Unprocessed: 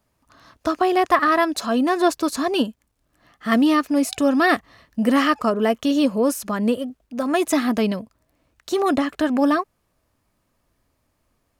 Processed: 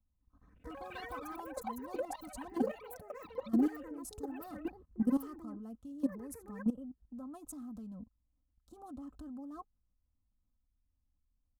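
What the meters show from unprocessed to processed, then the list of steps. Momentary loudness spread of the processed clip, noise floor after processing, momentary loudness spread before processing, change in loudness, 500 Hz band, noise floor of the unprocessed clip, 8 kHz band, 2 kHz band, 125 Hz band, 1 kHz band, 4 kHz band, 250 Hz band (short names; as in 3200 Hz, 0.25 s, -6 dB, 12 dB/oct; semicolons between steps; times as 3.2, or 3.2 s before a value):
15 LU, -80 dBFS, 10 LU, -19.0 dB, -22.0 dB, -70 dBFS, -20.0 dB, -28.0 dB, n/a, -24.5 dB, under -25 dB, -17.0 dB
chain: Wiener smoothing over 9 samples; passive tone stack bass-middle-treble 10-0-1; level quantiser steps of 18 dB; EQ curve 100 Hz 0 dB, 500 Hz -7 dB, 860 Hz +6 dB, 1300 Hz +1 dB, 1900 Hz -25 dB, 8300 Hz -2 dB; echoes that change speed 0.206 s, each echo +7 st, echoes 3; comb 3.9 ms, depth 62%; gain +9.5 dB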